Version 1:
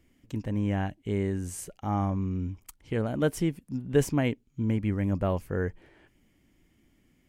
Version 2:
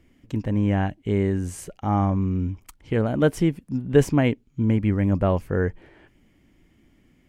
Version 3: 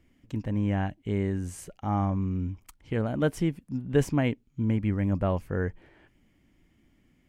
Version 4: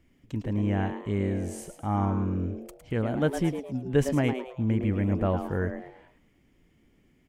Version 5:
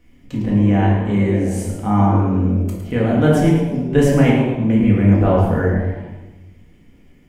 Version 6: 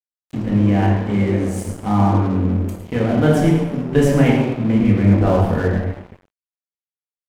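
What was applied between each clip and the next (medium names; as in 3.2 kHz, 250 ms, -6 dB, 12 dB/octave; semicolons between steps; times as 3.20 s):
treble shelf 5.2 kHz -8.5 dB; trim +6.5 dB
peaking EQ 410 Hz -2.5 dB 0.77 oct; trim -5 dB
frequency-shifting echo 108 ms, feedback 36%, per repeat +130 Hz, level -9 dB
simulated room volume 370 m³, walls mixed, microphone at 1.9 m; trim +5.5 dB
crossover distortion -32 dBFS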